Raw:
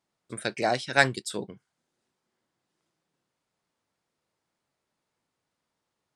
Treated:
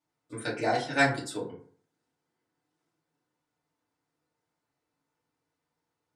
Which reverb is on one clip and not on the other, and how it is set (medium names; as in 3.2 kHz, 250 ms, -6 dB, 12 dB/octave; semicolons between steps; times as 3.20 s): FDN reverb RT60 0.49 s, low-frequency decay 1.05×, high-frequency decay 0.45×, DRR -7 dB; trim -9.5 dB